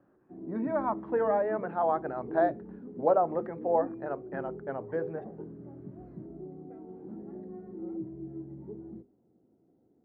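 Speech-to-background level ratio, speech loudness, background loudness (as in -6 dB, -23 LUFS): 11.5 dB, -31.0 LUFS, -42.5 LUFS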